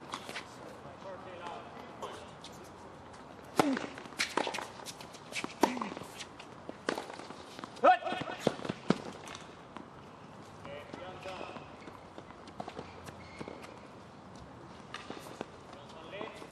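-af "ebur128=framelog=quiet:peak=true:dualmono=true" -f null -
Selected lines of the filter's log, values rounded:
Integrated loudness:
  I:         -34.5 LUFS
  Threshold: -45.6 LUFS
Loudness range:
  LRA:        13.5 LU
  Threshold: -55.0 LUFS
  LRA low:   -44.4 LUFS
  LRA high:  -30.9 LUFS
True peak:
  Peak:      -10.8 dBFS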